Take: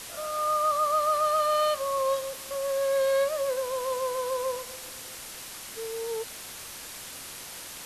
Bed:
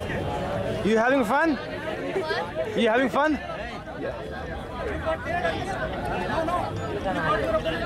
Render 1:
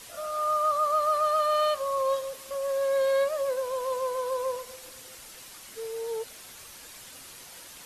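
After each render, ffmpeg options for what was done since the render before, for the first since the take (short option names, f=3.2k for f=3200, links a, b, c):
-af "afftdn=nr=7:nf=-42"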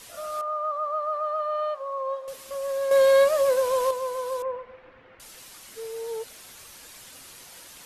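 -filter_complex "[0:a]asettb=1/sr,asplit=3[a][b][c];[a]atrim=end=0.414[d];[b]atrim=start=0.41:end=2.28,asetpts=PTS-STARTPTS,afade=t=in:d=0.004:c=qsin,afade=t=out:st=1.866:d=0.004:c=qsin,bandpass=f=820:t=q:w=1.4[e];[c]atrim=start=2.276[f];[d][e]acrossfade=d=0.004:c1=hsin:c2=qsin[g];[g][f]acrossfade=d=0.004:c1=qsin:c2=hsin,asettb=1/sr,asplit=3[h][i][j];[h]atrim=end=2.914[k];[i]atrim=start=2.91:end=3.91,asetpts=PTS-STARTPTS,afade=t=in:d=0.004:c=qsin,afade=t=out:st=0.996:d=0.004:c=qsin,acontrast=89[l];[j]atrim=start=3.906[m];[k][l]acrossfade=d=0.004:c1=hsin:c2=qsin[n];[n][m]acrossfade=d=0.004:c1=qsin:c2=hsin,asettb=1/sr,asplit=3[o][p][q];[o]atrim=end=4.424[r];[p]atrim=start=4.42:end=5.2,asetpts=PTS-STARTPTS,afade=t=in:d=0.004:c=qsin,afade=t=out:st=0.776:d=0.004:c=qsin,lowpass=f=2.2k:w=0.5412,lowpass=f=2.2k:w=1.3066[s];[q]atrim=start=5.196[t];[r][s]acrossfade=d=0.004:c1=hsin:c2=qsin[u];[u][t]acrossfade=d=0.004:c1=qsin:c2=hsin"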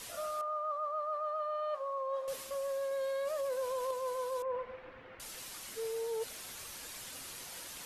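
-af "alimiter=limit=-19dB:level=0:latency=1:release=91,areverse,acompressor=threshold=-34dB:ratio=6,areverse"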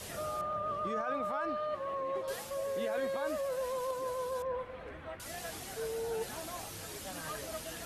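-filter_complex "[1:a]volume=-18.5dB[a];[0:a][a]amix=inputs=2:normalize=0"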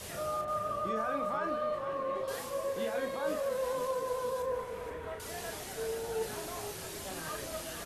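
-filter_complex "[0:a]asplit=2[a][b];[b]adelay=36,volume=-6dB[c];[a][c]amix=inputs=2:normalize=0,asplit=2[d][e];[e]asplit=6[f][g][h][i][j][k];[f]adelay=479,afreqshift=-34,volume=-10dB[l];[g]adelay=958,afreqshift=-68,volume=-15.8dB[m];[h]adelay=1437,afreqshift=-102,volume=-21.7dB[n];[i]adelay=1916,afreqshift=-136,volume=-27.5dB[o];[j]adelay=2395,afreqshift=-170,volume=-33.4dB[p];[k]adelay=2874,afreqshift=-204,volume=-39.2dB[q];[l][m][n][o][p][q]amix=inputs=6:normalize=0[r];[d][r]amix=inputs=2:normalize=0"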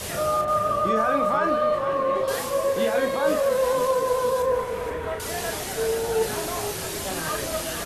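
-af "volume=11.5dB"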